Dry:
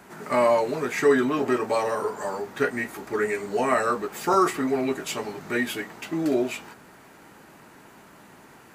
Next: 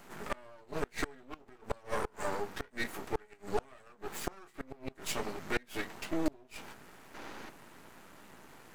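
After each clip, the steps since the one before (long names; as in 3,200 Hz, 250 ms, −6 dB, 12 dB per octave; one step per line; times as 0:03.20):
gate with flip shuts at −16 dBFS, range −29 dB
gain on a spectral selection 0:07.15–0:07.50, 200–6,700 Hz +9 dB
half-wave rectification
level −1 dB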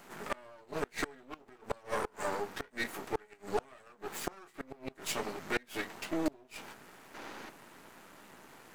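low-shelf EQ 110 Hz −9 dB
level +1 dB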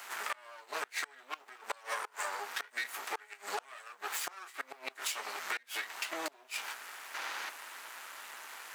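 high-pass filter 1,100 Hz 12 dB per octave
downward compressor 16 to 1, threshold −44 dBFS, peak gain reduction 15.5 dB
level +11 dB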